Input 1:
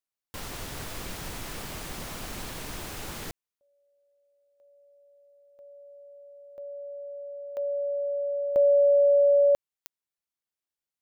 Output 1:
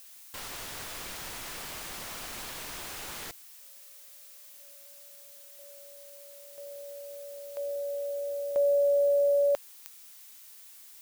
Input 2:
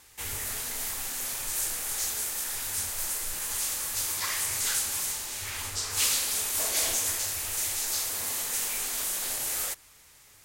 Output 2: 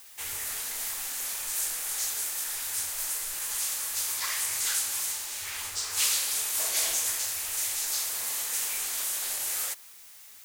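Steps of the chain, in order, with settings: bass shelf 430 Hz -12 dB; added noise blue -51 dBFS

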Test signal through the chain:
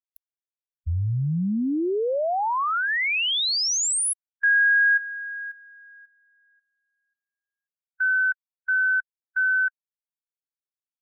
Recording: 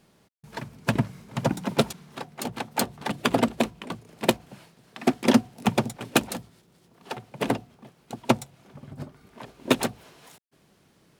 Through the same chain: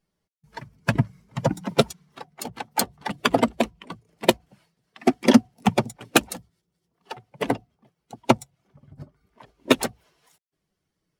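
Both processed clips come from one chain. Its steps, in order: expander on every frequency bin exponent 1.5; trim +5.5 dB

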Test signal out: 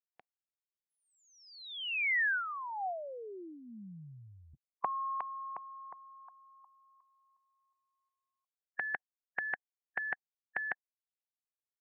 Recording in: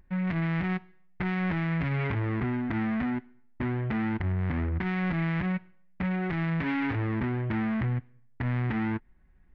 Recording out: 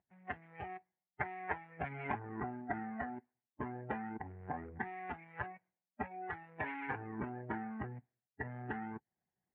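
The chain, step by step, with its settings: spectral noise reduction 18 dB; harmonic-percussive split harmonic -17 dB; cabinet simulation 170–2200 Hz, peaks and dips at 270 Hz -7 dB, 750 Hz +10 dB, 1.3 kHz -6 dB; trim +4.5 dB

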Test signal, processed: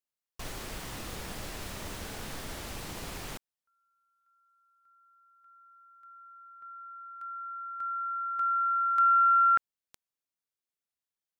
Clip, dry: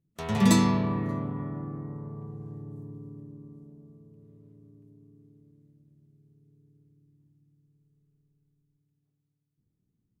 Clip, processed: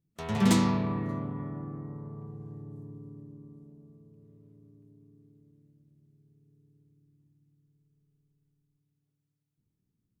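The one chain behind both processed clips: loudspeaker Doppler distortion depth 0.19 ms; trim -2.5 dB

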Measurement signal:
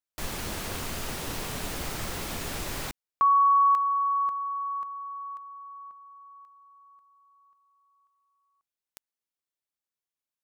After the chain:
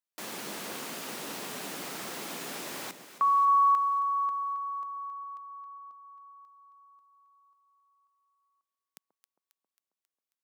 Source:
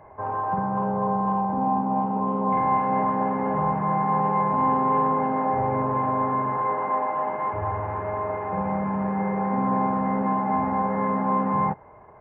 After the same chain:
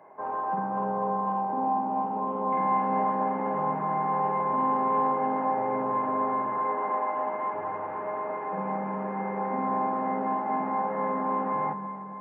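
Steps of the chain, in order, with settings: high-pass 190 Hz 24 dB/octave; echo whose repeats swap between lows and highs 135 ms, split 990 Hz, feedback 78%, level -11 dB; trim -3.5 dB

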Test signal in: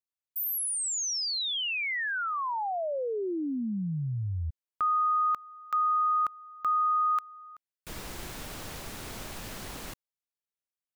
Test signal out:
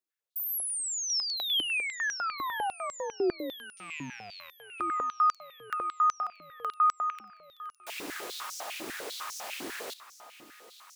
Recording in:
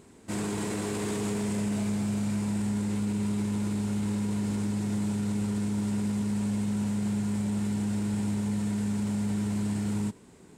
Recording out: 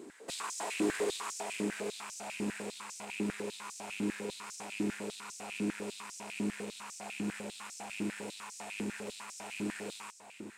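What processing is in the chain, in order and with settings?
rattle on loud lows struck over -38 dBFS, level -35 dBFS; compression 4:1, threshold -32 dBFS; on a send: echo whose repeats swap between lows and highs 505 ms, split 1.9 kHz, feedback 78%, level -13 dB; on the sum: step-sequenced high-pass 10 Hz 310–5800 Hz

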